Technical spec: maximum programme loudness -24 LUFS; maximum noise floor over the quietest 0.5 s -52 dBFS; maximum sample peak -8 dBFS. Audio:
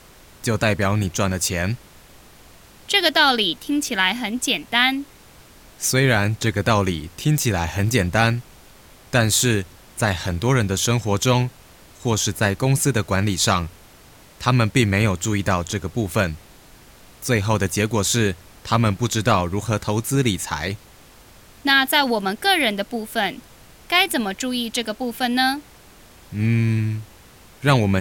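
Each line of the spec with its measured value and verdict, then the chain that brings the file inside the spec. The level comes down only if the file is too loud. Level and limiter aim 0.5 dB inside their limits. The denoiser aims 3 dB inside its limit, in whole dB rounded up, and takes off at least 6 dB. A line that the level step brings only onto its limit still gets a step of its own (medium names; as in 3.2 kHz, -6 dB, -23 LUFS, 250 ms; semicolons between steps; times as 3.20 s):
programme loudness -20.5 LUFS: fail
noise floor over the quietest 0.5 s -47 dBFS: fail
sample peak -2.5 dBFS: fail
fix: noise reduction 6 dB, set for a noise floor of -47 dBFS; trim -4 dB; peak limiter -8.5 dBFS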